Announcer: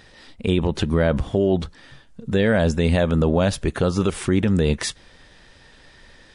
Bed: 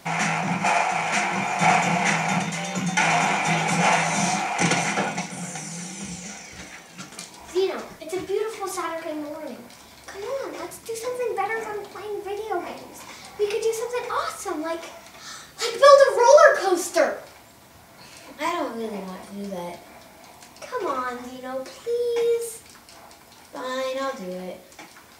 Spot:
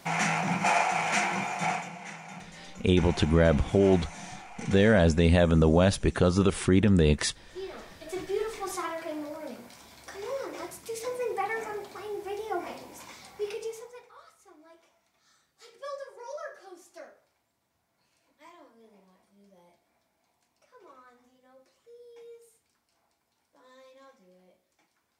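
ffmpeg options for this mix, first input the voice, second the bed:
ffmpeg -i stem1.wav -i stem2.wav -filter_complex "[0:a]adelay=2400,volume=-2.5dB[link_01];[1:a]volume=12dB,afade=type=out:start_time=1.23:duration=0.68:silence=0.141254,afade=type=in:start_time=7.52:duration=0.81:silence=0.16788,afade=type=out:start_time=12.94:duration=1.14:silence=0.0794328[link_02];[link_01][link_02]amix=inputs=2:normalize=0" out.wav

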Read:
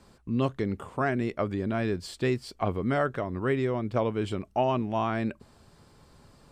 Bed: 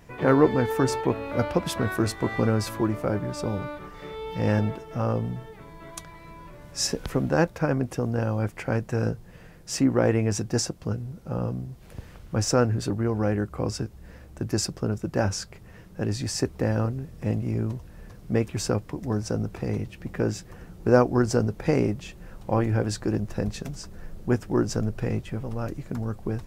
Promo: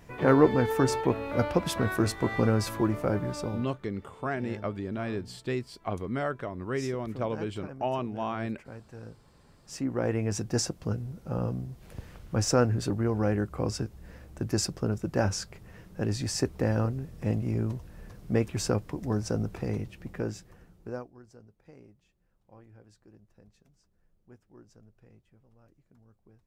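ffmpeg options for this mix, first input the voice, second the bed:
ffmpeg -i stem1.wav -i stem2.wav -filter_complex "[0:a]adelay=3250,volume=-4.5dB[link_01];[1:a]volume=15.5dB,afade=type=out:start_time=3.3:duration=0.47:silence=0.133352,afade=type=in:start_time=9.47:duration=1.21:silence=0.141254,afade=type=out:start_time=19.49:duration=1.63:silence=0.0375837[link_02];[link_01][link_02]amix=inputs=2:normalize=0" out.wav

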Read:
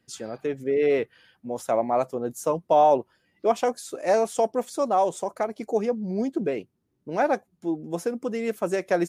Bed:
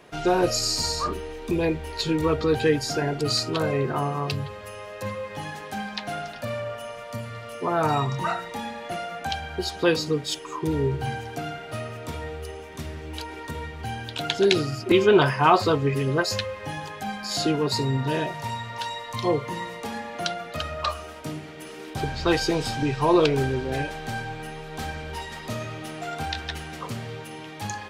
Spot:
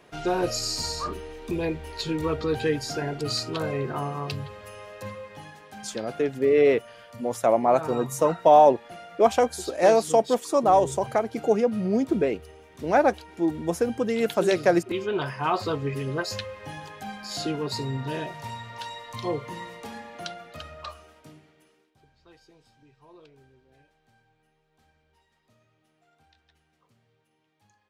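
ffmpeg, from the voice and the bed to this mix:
ffmpeg -i stem1.wav -i stem2.wav -filter_complex "[0:a]adelay=5750,volume=3dB[link_01];[1:a]volume=1.5dB,afade=type=out:start_time=4.87:duration=0.68:silence=0.446684,afade=type=in:start_time=15.13:duration=0.7:silence=0.530884,afade=type=out:start_time=19.68:duration=2.23:silence=0.0398107[link_02];[link_01][link_02]amix=inputs=2:normalize=0" out.wav

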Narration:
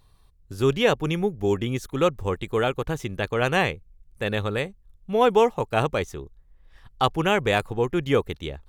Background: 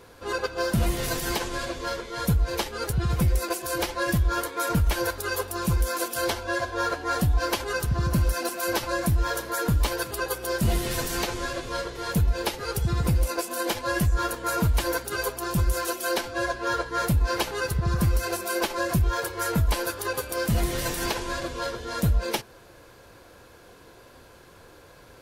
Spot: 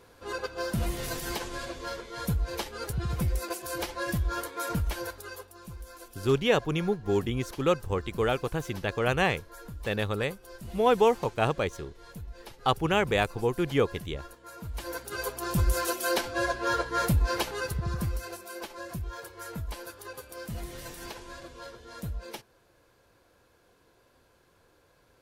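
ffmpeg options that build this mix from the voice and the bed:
ffmpeg -i stem1.wav -i stem2.wav -filter_complex "[0:a]adelay=5650,volume=-3.5dB[link_01];[1:a]volume=12.5dB,afade=type=out:start_time=4.72:duration=0.82:silence=0.211349,afade=type=in:start_time=14.61:duration=1.1:silence=0.11885,afade=type=out:start_time=16.98:duration=1.45:silence=0.237137[link_02];[link_01][link_02]amix=inputs=2:normalize=0" out.wav

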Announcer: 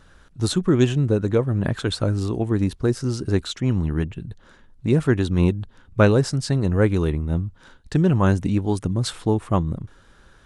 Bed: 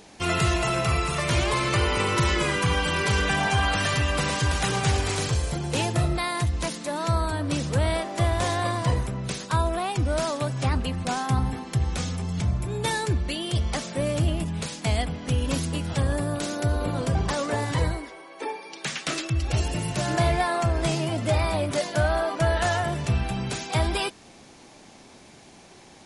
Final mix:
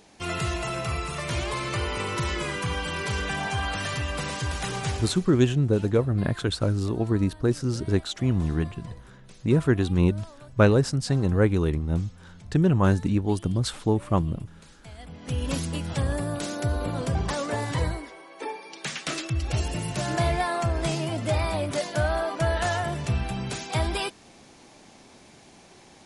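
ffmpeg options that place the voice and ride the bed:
ffmpeg -i stem1.wav -i stem2.wav -filter_complex "[0:a]adelay=4600,volume=-2.5dB[link_01];[1:a]volume=13dB,afade=type=out:start_time=4.88:duration=0.33:silence=0.177828,afade=type=in:start_time=14.98:duration=0.5:silence=0.11885[link_02];[link_01][link_02]amix=inputs=2:normalize=0" out.wav

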